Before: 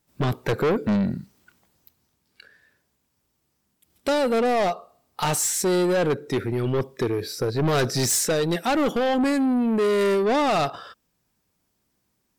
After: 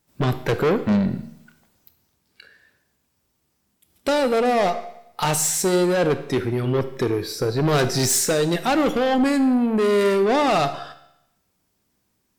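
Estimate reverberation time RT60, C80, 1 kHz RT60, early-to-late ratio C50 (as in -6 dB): 0.80 s, 15.0 dB, 0.80 s, 13.0 dB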